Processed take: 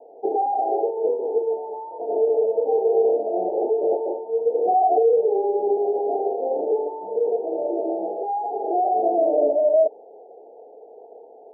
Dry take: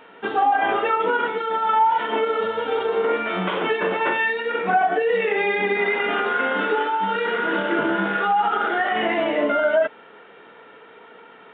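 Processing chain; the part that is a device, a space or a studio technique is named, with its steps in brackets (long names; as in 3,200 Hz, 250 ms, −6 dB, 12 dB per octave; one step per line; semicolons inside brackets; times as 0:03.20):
dynamic equaliser 360 Hz, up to +5 dB, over −36 dBFS, Q 2.4
laptop speaker (high-pass filter 400 Hz 24 dB per octave; parametric band 840 Hz +8 dB 0.4 octaves; parametric band 2,700 Hz +7 dB 0.25 octaves; brickwall limiter −15 dBFS, peak gain reduction 11 dB)
high-pass filter 49 Hz
0:07.36–0:08.37: low-shelf EQ 350 Hz −7.5 dB
Butterworth low-pass 760 Hz 96 dB per octave
level +5.5 dB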